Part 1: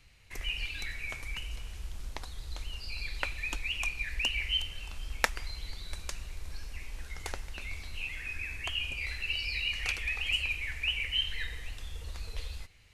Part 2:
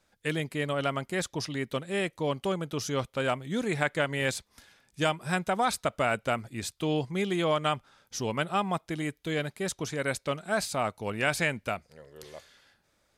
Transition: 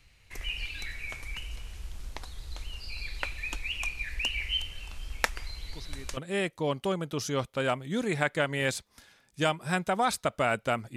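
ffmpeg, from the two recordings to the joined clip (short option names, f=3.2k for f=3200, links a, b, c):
-filter_complex "[1:a]asplit=2[a][b];[0:a]apad=whole_dur=10.96,atrim=end=10.96,atrim=end=6.172[c];[b]atrim=start=1.768:end=6.56[d];[a]atrim=start=1.27:end=1.77,asetpts=PTS-STARTPTS,volume=-14.5dB,afade=t=in:d=0.004:c=hsin,afade=t=out:st=0.496:d=0.004:c=hsin,adelay=5670[e];[c][d]acrossfade=d=0.004:c1=hsin:c2=hsin[f];[f][e]amix=inputs=2:normalize=0"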